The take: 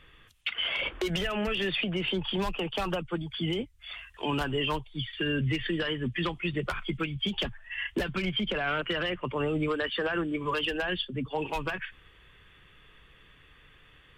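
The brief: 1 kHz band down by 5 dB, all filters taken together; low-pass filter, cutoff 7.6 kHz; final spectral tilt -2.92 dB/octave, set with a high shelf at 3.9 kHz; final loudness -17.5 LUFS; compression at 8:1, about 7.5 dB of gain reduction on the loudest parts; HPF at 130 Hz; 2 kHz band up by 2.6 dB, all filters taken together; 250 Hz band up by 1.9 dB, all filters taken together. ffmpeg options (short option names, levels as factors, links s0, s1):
-af "highpass=130,lowpass=7600,equalizer=f=250:t=o:g=4,equalizer=f=1000:t=o:g=-9,equalizer=f=2000:t=o:g=7.5,highshelf=f=3900:g=-5.5,acompressor=threshold=0.0251:ratio=8,volume=8.41"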